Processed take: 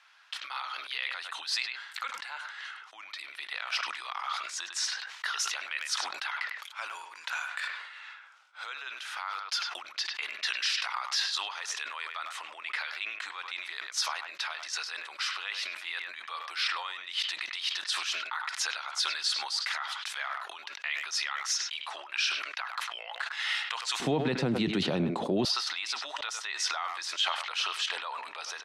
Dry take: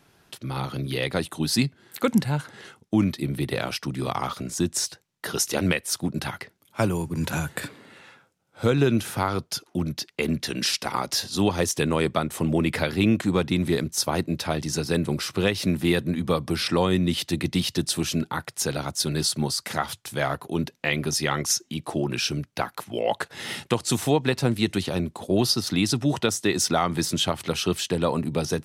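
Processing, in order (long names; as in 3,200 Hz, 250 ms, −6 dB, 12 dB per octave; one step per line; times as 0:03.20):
low-pass filter 4,100 Hz 12 dB per octave
far-end echo of a speakerphone 100 ms, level −12 dB
downward compressor 2.5 to 1, threshold −29 dBFS, peak gain reduction 10 dB
brickwall limiter −22.5 dBFS, peak gain reduction 9.5 dB
high-pass filter 1,100 Hz 24 dB per octave, from 0:24.00 140 Hz, from 0:25.45 960 Hz
level that may fall only so fast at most 53 dB per second
level +4.5 dB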